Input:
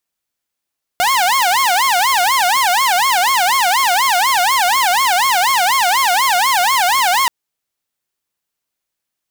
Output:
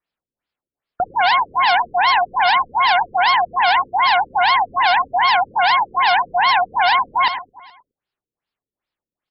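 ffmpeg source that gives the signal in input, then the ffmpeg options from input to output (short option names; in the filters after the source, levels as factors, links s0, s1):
-f lavfi -i "aevalsrc='0.355*(2*mod((896.5*t-193.5/(2*PI*4.1)*sin(2*PI*4.1*t)),1)-1)':d=6.28:s=44100"
-filter_complex "[0:a]asplit=2[s0][s1];[s1]aecho=0:1:105|210|315|420|525|630:0.299|0.155|0.0807|0.042|0.0218|0.0114[s2];[s0][s2]amix=inputs=2:normalize=0,afftfilt=real='re*lt(b*sr/1024,510*pow(5500/510,0.5+0.5*sin(2*PI*2.5*pts/sr)))':imag='im*lt(b*sr/1024,510*pow(5500/510,0.5+0.5*sin(2*PI*2.5*pts/sr)))':win_size=1024:overlap=0.75"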